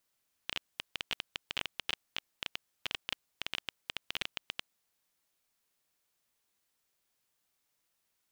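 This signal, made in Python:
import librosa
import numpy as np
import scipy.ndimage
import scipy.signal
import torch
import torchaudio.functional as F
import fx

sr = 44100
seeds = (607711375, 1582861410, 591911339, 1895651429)

y = fx.geiger_clicks(sr, seeds[0], length_s=4.31, per_s=13.0, level_db=-16.0)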